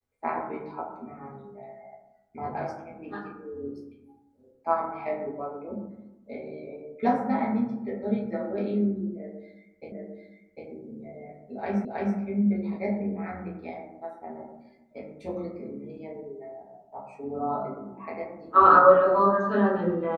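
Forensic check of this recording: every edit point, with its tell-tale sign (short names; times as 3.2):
9.92 repeat of the last 0.75 s
11.85 repeat of the last 0.32 s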